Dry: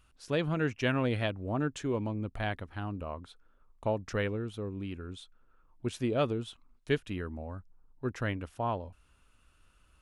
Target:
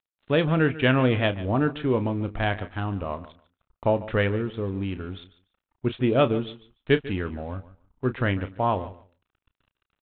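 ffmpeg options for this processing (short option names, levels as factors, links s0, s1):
-filter_complex "[0:a]aresample=8000,aeval=exprs='sgn(val(0))*max(abs(val(0))-0.00141,0)':c=same,aresample=44100,asplit=2[s0][s1];[s1]adelay=31,volume=0.251[s2];[s0][s2]amix=inputs=2:normalize=0,aecho=1:1:146|292:0.141|0.0226,volume=2.66"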